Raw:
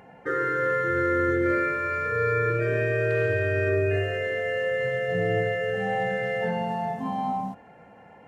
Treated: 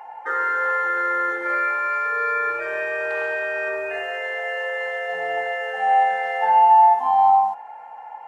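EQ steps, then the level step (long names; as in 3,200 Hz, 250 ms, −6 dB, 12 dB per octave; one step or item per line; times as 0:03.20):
high-pass with resonance 860 Hz, resonance Q 9.7
+1.5 dB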